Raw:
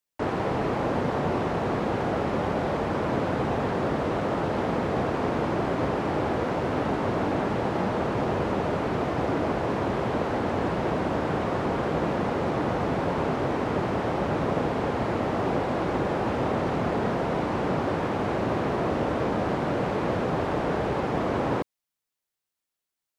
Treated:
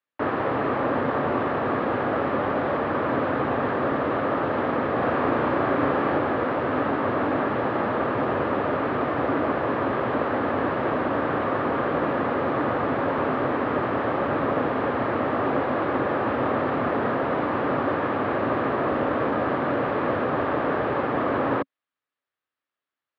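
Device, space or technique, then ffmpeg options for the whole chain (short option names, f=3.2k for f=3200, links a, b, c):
guitar cabinet: -filter_complex "[0:a]highpass=97,equalizer=f=180:t=q:w=4:g=-8,equalizer=f=270:t=q:w=4:g=5,equalizer=f=560:t=q:w=4:g=4,equalizer=f=1.2k:t=q:w=4:g=8,equalizer=f=1.7k:t=q:w=4:g=6,lowpass=f=3.6k:w=0.5412,lowpass=f=3.6k:w=1.3066,asettb=1/sr,asplit=3[a][b][c];[a]atrim=end=4.984[d];[b]atrim=start=4.98:end=6.18,asetpts=PTS-STARTPTS,afade=t=in:d=0.004:c=qsin,afade=t=out:st=1.196:d=0.004:c=qsin,asplit=2[e][f];[f]adelay=35,volume=-3.5dB[g];[e][g]amix=inputs=2:normalize=0,atrim=end_sample=52920[h];[c]atrim=start=6.176[i];[d][h]acrossfade=d=0.004:c1=hsin:c2=qsin[j];[j][i]acrossfade=d=0.004:c1=qsin:c2=hsin"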